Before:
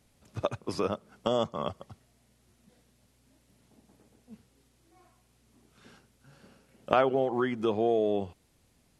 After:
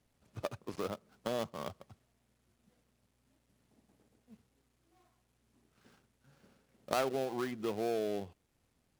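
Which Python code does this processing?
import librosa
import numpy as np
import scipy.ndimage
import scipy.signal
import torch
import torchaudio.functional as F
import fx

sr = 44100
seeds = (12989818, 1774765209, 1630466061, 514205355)

y = fx.dead_time(x, sr, dead_ms=0.16)
y = F.gain(torch.from_numpy(y), -8.0).numpy()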